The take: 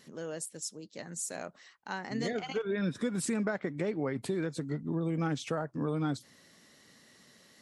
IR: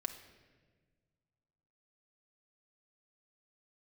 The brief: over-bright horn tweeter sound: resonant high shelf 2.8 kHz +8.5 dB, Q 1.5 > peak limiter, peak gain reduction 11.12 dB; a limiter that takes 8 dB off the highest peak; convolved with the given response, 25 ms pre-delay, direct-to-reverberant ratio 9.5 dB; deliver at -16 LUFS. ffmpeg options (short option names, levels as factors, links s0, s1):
-filter_complex "[0:a]alimiter=level_in=1.33:limit=0.0631:level=0:latency=1,volume=0.75,asplit=2[s0][s1];[1:a]atrim=start_sample=2205,adelay=25[s2];[s1][s2]afir=irnorm=-1:irlink=0,volume=0.355[s3];[s0][s3]amix=inputs=2:normalize=0,highshelf=f=2800:t=q:w=1.5:g=8.5,volume=11.2,alimiter=limit=0.473:level=0:latency=1"